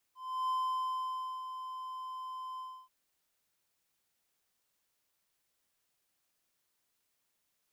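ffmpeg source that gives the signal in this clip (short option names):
-f lavfi -i "aevalsrc='0.0422*(1-4*abs(mod(1030*t+0.25,1)-0.5))':d=2.735:s=44100,afade=t=in:d=0.34,afade=t=out:st=0.34:d=0.932:silence=0.316,afade=t=out:st=2.44:d=0.295"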